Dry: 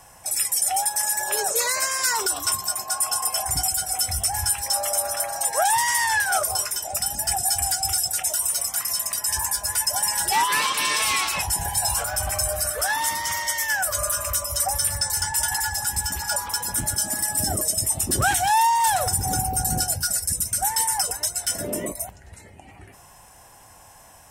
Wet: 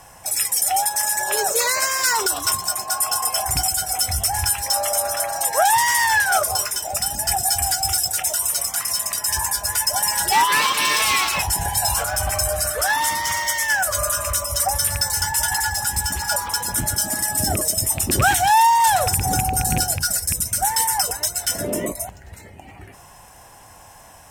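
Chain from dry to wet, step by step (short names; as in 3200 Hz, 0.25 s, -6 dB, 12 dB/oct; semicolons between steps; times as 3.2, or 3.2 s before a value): rattling part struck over -23 dBFS, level -18 dBFS; decimation joined by straight lines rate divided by 2×; gain +4.5 dB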